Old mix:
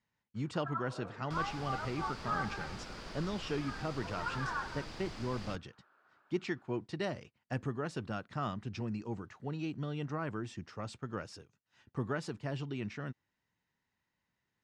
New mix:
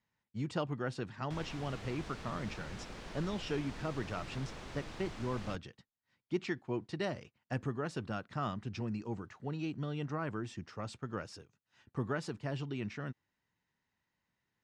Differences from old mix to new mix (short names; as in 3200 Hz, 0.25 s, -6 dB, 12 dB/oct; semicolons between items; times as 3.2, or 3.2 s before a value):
first sound: muted; second sound: add bell 4800 Hz -9 dB 0.28 oct